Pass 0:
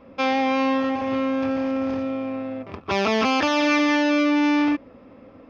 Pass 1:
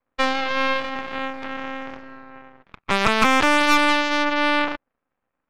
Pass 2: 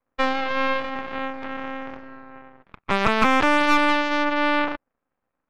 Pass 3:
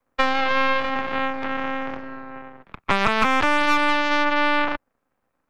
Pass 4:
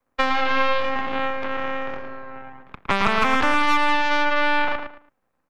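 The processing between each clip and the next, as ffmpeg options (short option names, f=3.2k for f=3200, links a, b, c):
-af "equalizer=f=1.2k:t=o:w=1.2:g=13,aeval=exprs='0.841*(cos(1*acos(clip(val(0)/0.841,-1,1)))-cos(1*PI/2))+0.0944*(cos(3*acos(clip(val(0)/0.841,-1,1)))-cos(3*PI/2))+0.0075*(cos(5*acos(clip(val(0)/0.841,-1,1)))-cos(5*PI/2))+0.0473*(cos(6*acos(clip(val(0)/0.841,-1,1)))-cos(6*PI/2))+0.0841*(cos(7*acos(clip(val(0)/0.841,-1,1)))-cos(7*PI/2))':c=same,aeval=exprs='max(val(0),0)':c=same"
-af "highshelf=f=3.7k:g=-11"
-filter_complex "[0:a]acrossover=split=170|640[a][b][c];[a]acompressor=threshold=-31dB:ratio=4[d];[b]acompressor=threshold=-36dB:ratio=4[e];[c]acompressor=threshold=-23dB:ratio=4[f];[d][e][f]amix=inputs=3:normalize=0,volume=6dB"
-filter_complex "[0:a]asplit=2[a][b];[b]adelay=111,lowpass=f=3.5k:p=1,volume=-6dB,asplit=2[c][d];[d]adelay=111,lowpass=f=3.5k:p=1,volume=0.26,asplit=2[e][f];[f]adelay=111,lowpass=f=3.5k:p=1,volume=0.26[g];[a][c][e][g]amix=inputs=4:normalize=0,volume=-1dB"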